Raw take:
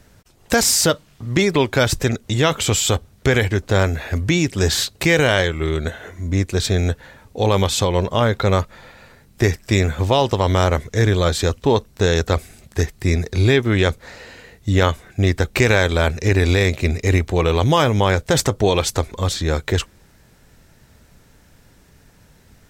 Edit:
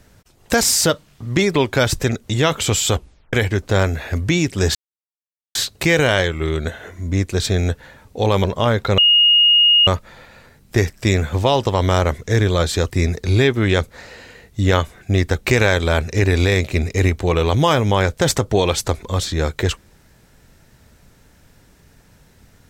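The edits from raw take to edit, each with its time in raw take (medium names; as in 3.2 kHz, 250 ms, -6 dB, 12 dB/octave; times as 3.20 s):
2.94 s: tape stop 0.39 s
4.75 s: insert silence 0.80 s
7.64–7.99 s: delete
8.53 s: add tone 2.86 kHz -9 dBFS 0.89 s
11.56–12.99 s: delete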